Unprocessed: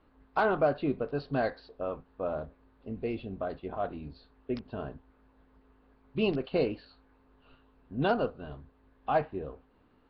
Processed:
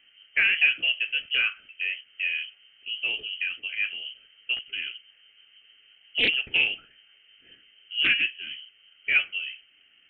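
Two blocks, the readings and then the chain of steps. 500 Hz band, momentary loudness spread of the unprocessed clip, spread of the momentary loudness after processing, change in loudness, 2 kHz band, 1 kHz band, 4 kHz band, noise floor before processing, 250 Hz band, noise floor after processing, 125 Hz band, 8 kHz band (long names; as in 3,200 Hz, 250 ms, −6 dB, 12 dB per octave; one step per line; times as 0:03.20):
−17.0 dB, 16 LU, 16 LU, +7.5 dB, +17.0 dB, −16.0 dB, +22.0 dB, −65 dBFS, −15.0 dB, −60 dBFS, below −15 dB, can't be measured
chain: notch filter 2,100 Hz, Q 5.4
voice inversion scrambler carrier 3,100 Hz
highs frequency-modulated by the lows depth 0.2 ms
level +4.5 dB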